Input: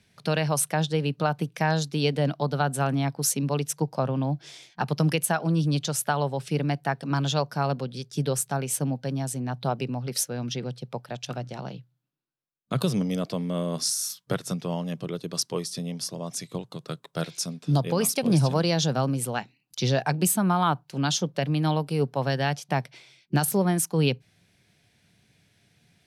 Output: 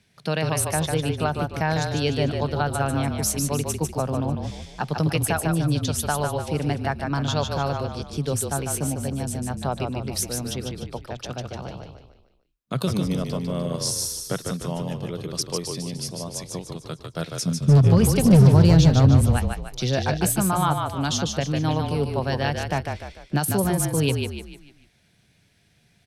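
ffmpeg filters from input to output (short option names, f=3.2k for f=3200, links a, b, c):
-filter_complex "[0:a]asettb=1/sr,asplit=3[a][b][c];[a]atrim=end=17.434[d];[b]atrim=start=17.43:end=19.38,asetpts=PTS-STARTPTS,afade=t=in:d=0.004:c=qsin,afade=t=out:st=1.946:d=0.004:c=qsin,bass=f=250:g=14,treble=f=4k:g=-2[e];[c]atrim=start=19.376[f];[d][e]acrossfade=d=0.004:c1=hsin:c2=qsin[g];[g][f]acrossfade=d=0.004:c1=qsin:c2=hsin,volume=10.5dB,asoftclip=hard,volume=-10.5dB,asplit=2[h][i];[i]asplit=5[j][k][l][m][n];[j]adelay=149,afreqshift=-33,volume=-4.5dB[o];[k]adelay=298,afreqshift=-66,volume=-11.8dB[p];[l]adelay=447,afreqshift=-99,volume=-19.2dB[q];[m]adelay=596,afreqshift=-132,volume=-26.5dB[r];[n]adelay=745,afreqshift=-165,volume=-33.8dB[s];[o][p][q][r][s]amix=inputs=5:normalize=0[t];[h][t]amix=inputs=2:normalize=0"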